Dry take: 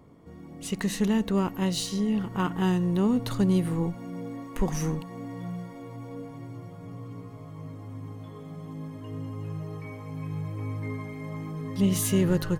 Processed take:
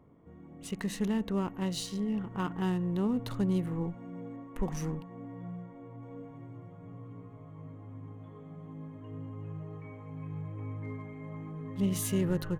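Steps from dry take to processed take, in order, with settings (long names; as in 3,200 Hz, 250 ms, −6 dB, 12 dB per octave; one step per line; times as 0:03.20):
adaptive Wiener filter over 9 samples
0:04.36–0:06.03: one half of a high-frequency compander decoder only
level −6 dB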